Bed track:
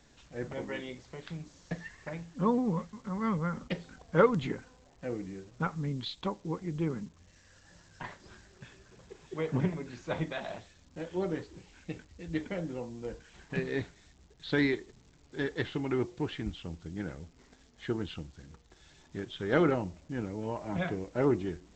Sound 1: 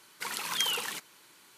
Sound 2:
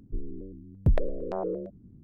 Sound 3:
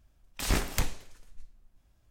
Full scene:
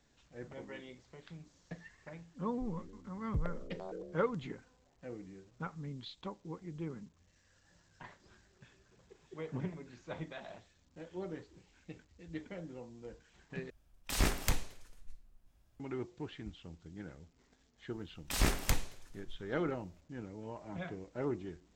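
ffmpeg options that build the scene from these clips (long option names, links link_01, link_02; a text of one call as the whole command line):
ffmpeg -i bed.wav -i cue0.wav -i cue1.wav -i cue2.wav -filter_complex "[3:a]asplit=2[link_01][link_02];[0:a]volume=-9.5dB,asplit=2[link_03][link_04];[link_03]atrim=end=13.704[link_05];[link_01]atrim=end=2.1,asetpts=PTS-STARTPTS,volume=-3dB[link_06];[link_04]atrim=start=15.796[link_07];[2:a]atrim=end=2.03,asetpts=PTS-STARTPTS,volume=-13.5dB,afade=type=in:duration=0.004:curve=hsin,afade=type=out:start_time=2.026:duration=0.004:curve=hsin,adelay=2480[link_08];[link_02]atrim=end=2.1,asetpts=PTS-STARTPTS,volume=-2.5dB,afade=type=in:duration=0.004:curve=hsin,afade=type=out:start_time=2.096:duration=0.004:curve=hsin,adelay=17910[link_09];[link_05][link_06]acrossfade=duration=0.004:curve1=hsin:curve2=hsin[link_10];[link_10][link_07]acrossfade=duration=0.004:curve1=hsin:curve2=hsin[link_11];[link_11][link_08][link_09]amix=inputs=3:normalize=0" out.wav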